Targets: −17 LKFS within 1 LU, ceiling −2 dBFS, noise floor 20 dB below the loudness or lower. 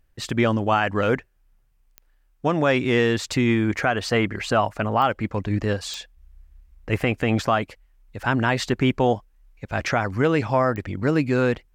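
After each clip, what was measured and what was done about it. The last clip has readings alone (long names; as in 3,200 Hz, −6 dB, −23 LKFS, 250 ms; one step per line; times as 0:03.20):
number of clicks 4; integrated loudness −22.5 LKFS; sample peak −9.0 dBFS; target loudness −17.0 LKFS
→ click removal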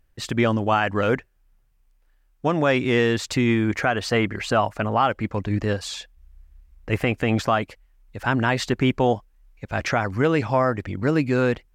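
number of clicks 0; integrated loudness −22.5 LKFS; sample peak −9.0 dBFS; target loudness −17.0 LKFS
→ level +5.5 dB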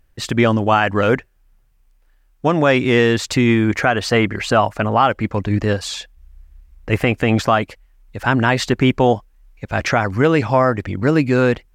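integrated loudness −17.0 LKFS; sample peak −3.5 dBFS; background noise floor −57 dBFS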